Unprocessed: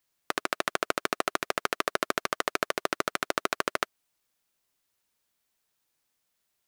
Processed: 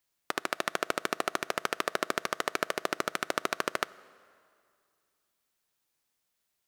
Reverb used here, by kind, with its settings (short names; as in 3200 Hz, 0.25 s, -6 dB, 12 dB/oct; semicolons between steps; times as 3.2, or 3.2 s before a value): plate-style reverb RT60 2.4 s, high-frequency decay 0.75×, DRR 19.5 dB; gain -2 dB